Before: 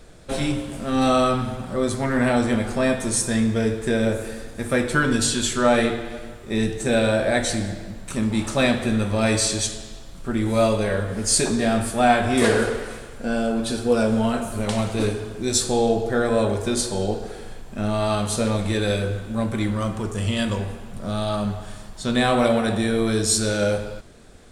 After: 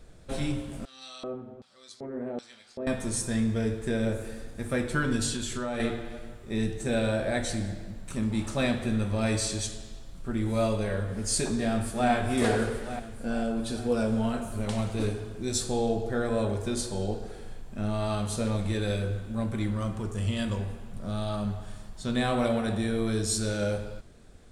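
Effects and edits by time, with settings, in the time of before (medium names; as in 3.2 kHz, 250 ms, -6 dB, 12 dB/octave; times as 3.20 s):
0.85–2.87 s: LFO band-pass square 1.3 Hz 410–4600 Hz
5.36–5.80 s: compression 5:1, threshold -21 dBFS
11.51–12.11 s: echo throw 440 ms, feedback 60%, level -8 dB
whole clip: bass shelf 190 Hz +6.5 dB; trim -9 dB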